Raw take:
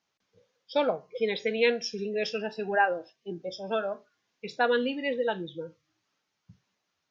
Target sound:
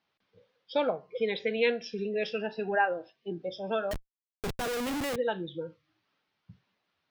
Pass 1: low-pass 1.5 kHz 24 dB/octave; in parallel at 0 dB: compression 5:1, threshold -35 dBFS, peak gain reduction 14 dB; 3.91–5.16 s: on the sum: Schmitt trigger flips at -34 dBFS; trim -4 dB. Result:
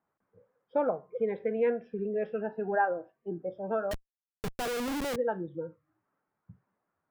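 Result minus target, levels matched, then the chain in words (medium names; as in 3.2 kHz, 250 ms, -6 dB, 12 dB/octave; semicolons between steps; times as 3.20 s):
4 kHz band -6.5 dB
low-pass 4.3 kHz 24 dB/octave; in parallel at 0 dB: compression 5:1, threshold -35 dBFS, peak gain reduction 15 dB; 3.91–5.16 s: on the sum: Schmitt trigger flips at -34 dBFS; trim -4 dB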